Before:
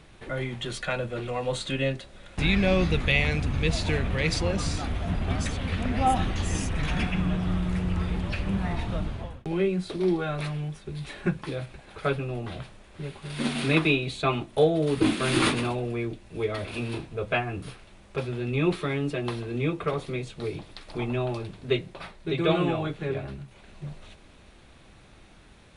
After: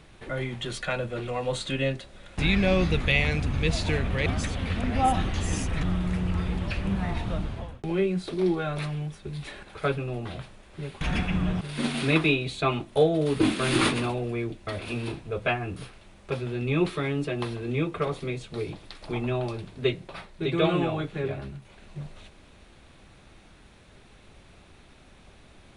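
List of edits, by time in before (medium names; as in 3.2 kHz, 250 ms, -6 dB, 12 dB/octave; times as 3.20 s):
4.26–5.28 s: delete
6.85–7.45 s: move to 13.22 s
11.25–11.84 s: delete
16.28–16.53 s: delete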